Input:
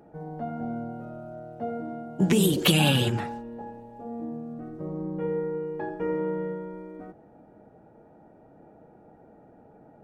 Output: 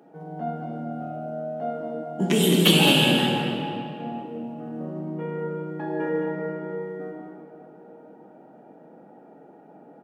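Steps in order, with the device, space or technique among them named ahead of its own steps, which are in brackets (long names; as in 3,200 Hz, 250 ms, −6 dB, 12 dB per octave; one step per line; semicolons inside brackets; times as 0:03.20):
stadium PA (high-pass filter 180 Hz 24 dB per octave; parametric band 3,100 Hz +5.5 dB 0.24 octaves; loudspeakers that aren't time-aligned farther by 55 metres −10 dB, 73 metres −7 dB; convolution reverb RT60 3.0 s, pre-delay 7 ms, DRR −0.5 dB)
0:06.24–0:06.81: low-pass filter 6,800 Hz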